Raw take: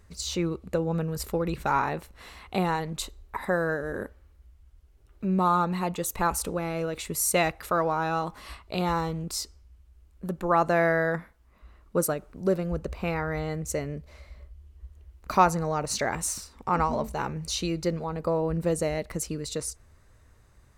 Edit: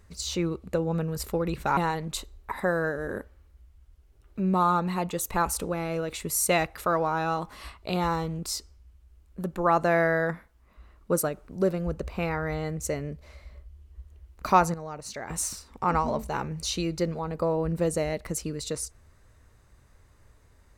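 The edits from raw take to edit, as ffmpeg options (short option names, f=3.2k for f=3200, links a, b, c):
-filter_complex "[0:a]asplit=4[a][b][c][d];[a]atrim=end=1.772[e];[b]atrim=start=2.618:end=15.592[f];[c]atrim=start=15.588:end=16.152,asetpts=PTS-STARTPTS,volume=-9.5dB[g];[d]atrim=start=16.148[h];[e][f]acrossfade=d=0.004:c1=hsin:c2=hsin[i];[i][g]acrossfade=d=0.004:c1=hsin:c2=hsin[j];[j][h]acrossfade=d=0.004:c1=hsin:c2=hsin"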